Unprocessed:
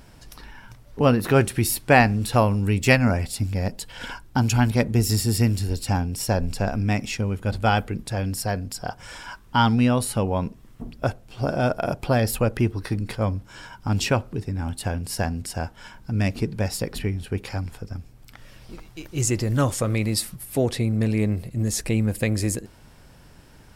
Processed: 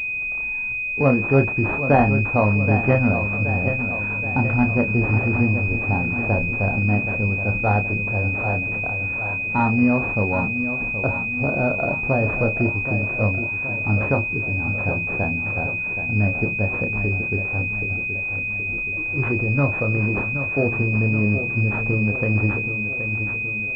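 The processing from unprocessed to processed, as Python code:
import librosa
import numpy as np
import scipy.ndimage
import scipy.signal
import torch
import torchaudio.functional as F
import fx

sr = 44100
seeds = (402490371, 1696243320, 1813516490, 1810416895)

y = fx.doubler(x, sr, ms=29.0, db=-7)
y = fx.echo_feedback(y, sr, ms=774, feedback_pct=58, wet_db=-9.5)
y = fx.pwm(y, sr, carrier_hz=2500.0)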